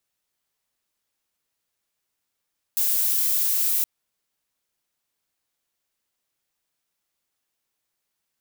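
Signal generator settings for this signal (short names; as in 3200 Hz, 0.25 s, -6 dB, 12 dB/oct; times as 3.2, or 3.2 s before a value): noise violet, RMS -22 dBFS 1.07 s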